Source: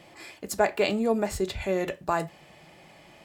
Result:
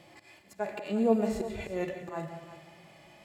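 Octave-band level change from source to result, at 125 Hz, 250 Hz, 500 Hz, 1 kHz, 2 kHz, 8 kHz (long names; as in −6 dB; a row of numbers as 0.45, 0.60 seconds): −3.5, −0.5, −5.0, −8.5, −10.0, −13.5 decibels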